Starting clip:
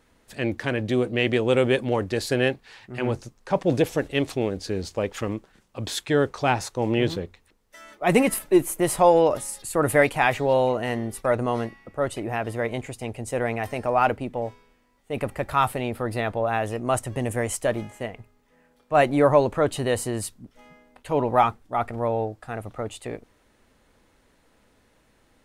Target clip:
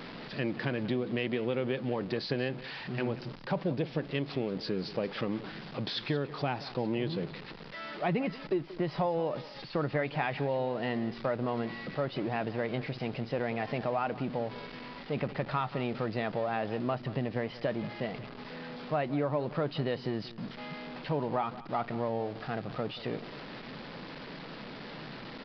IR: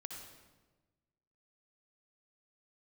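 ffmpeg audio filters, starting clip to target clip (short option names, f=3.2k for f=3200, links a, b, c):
-filter_complex "[0:a]aeval=exprs='val(0)+0.5*0.0251*sgn(val(0))':c=same,lowshelf=f=110:t=q:w=3:g=-9.5,acompressor=threshold=-22dB:ratio=6,asplit=2[a][b];[b]aecho=0:1:181:0.15[c];[a][c]amix=inputs=2:normalize=0,aresample=11025,aresample=44100,volume=-5.5dB"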